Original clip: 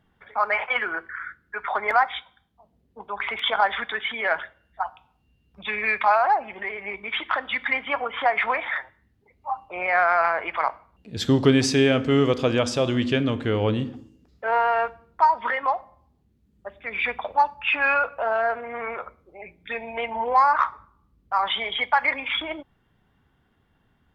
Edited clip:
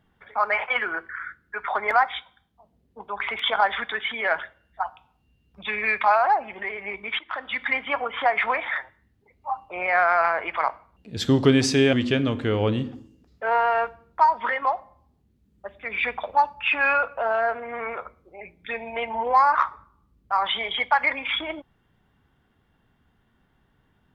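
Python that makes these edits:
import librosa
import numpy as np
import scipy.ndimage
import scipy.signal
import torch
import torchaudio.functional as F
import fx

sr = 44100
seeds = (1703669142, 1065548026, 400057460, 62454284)

y = fx.edit(x, sr, fx.fade_in_from(start_s=7.19, length_s=0.63, curve='qsin', floor_db=-16.5),
    fx.cut(start_s=11.93, length_s=1.01), tone=tone)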